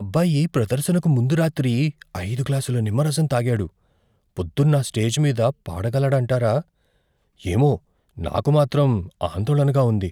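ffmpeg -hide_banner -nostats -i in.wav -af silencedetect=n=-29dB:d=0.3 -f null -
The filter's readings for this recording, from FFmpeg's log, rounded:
silence_start: 3.67
silence_end: 4.37 | silence_duration: 0.70
silence_start: 6.61
silence_end: 7.45 | silence_duration: 0.84
silence_start: 7.76
silence_end: 8.18 | silence_duration: 0.42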